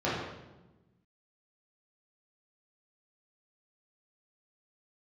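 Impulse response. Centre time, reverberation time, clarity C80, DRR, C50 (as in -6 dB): 75 ms, 1.1 s, 3.0 dB, -9.0 dB, 0.5 dB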